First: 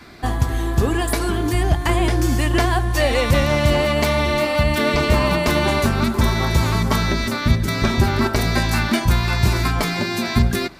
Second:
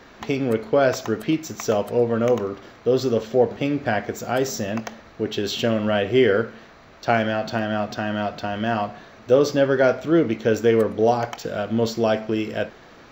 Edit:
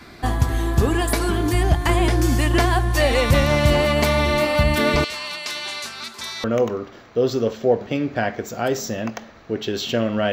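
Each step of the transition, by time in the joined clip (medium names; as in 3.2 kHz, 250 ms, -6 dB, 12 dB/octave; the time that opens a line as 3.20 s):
first
5.04–6.44 s: band-pass filter 4.9 kHz, Q 0.98
6.44 s: go over to second from 2.14 s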